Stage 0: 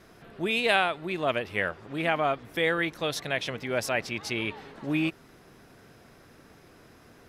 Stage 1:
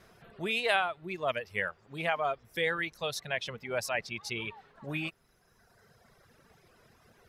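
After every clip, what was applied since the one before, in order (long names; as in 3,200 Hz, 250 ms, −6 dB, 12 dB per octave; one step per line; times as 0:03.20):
reverb reduction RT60 1.8 s
parametric band 290 Hz −10.5 dB 0.43 octaves
level −3 dB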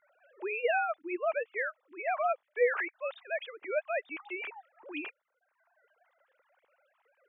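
three sine waves on the formant tracks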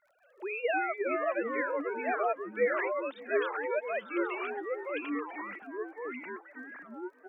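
delay with pitch and tempo change per echo 234 ms, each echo −3 semitones, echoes 3
surface crackle 33 per second −58 dBFS
repeating echo 576 ms, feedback 41%, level −22 dB
level −1.5 dB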